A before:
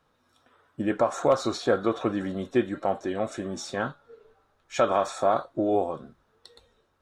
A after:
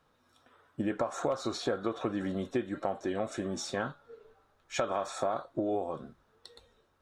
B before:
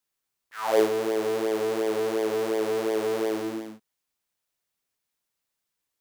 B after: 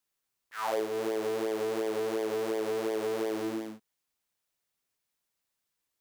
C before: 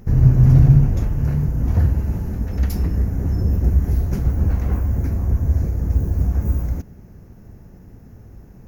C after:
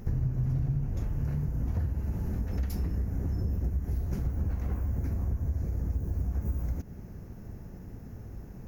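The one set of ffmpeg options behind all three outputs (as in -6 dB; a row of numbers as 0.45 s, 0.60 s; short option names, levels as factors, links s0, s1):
-af "acompressor=threshold=0.0447:ratio=5,volume=0.891"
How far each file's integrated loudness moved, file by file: -7.0 LU, -5.5 LU, -13.5 LU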